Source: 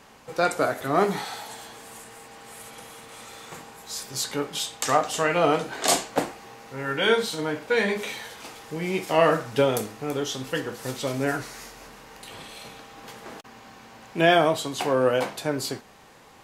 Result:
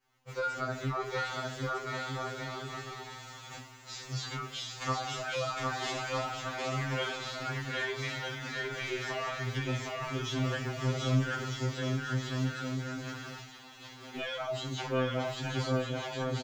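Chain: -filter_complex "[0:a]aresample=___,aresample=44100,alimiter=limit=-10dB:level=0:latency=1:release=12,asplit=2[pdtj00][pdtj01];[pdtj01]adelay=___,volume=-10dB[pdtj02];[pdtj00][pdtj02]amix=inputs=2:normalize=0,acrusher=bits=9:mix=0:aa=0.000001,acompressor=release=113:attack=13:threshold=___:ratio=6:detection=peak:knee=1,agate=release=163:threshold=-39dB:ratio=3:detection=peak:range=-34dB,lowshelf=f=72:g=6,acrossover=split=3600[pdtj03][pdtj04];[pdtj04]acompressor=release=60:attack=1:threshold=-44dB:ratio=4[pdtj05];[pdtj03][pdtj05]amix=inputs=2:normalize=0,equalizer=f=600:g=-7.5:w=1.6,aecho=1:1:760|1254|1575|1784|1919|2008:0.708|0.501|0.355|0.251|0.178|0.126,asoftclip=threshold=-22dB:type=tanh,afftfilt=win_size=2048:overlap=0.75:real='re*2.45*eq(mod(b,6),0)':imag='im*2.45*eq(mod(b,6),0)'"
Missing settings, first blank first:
16000, 17, -27dB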